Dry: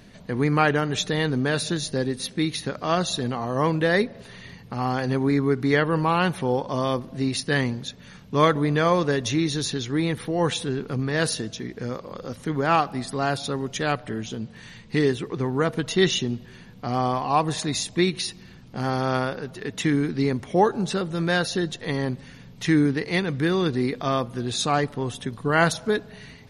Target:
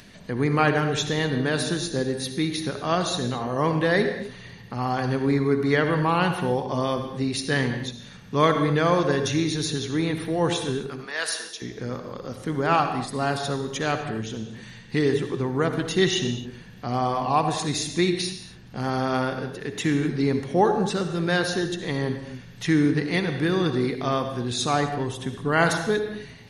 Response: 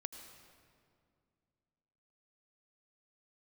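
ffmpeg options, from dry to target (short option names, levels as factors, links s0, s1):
-filter_complex "[0:a]asettb=1/sr,asplit=3[s0][s1][s2];[s0]atrim=end=10.884[s3];[s1]atrim=start=10.88:end=11.62,asetpts=PTS-STARTPTS,afade=t=in:d=0.004:c=qsin,afade=t=out:st=0.736:d=0.004:c=qsin,highpass=860[s4];[s2]atrim=start=11.616[s5];[s3][s4]acrossfade=d=0.004:c1=hsin:c2=qsin[s6];[s6][s5]acrossfade=d=0.004:c1=qsin:c2=hsin[s7];[1:a]atrim=start_sample=2205,afade=t=out:st=0.43:d=0.01,atrim=end_sample=19404,asetrate=61740,aresample=44100[s8];[s7][s8]afir=irnorm=-1:irlink=0,acrossover=split=1200[s9][s10];[s10]acompressor=mode=upward:threshold=0.00251:ratio=2.5[s11];[s9][s11]amix=inputs=2:normalize=0,volume=1.88"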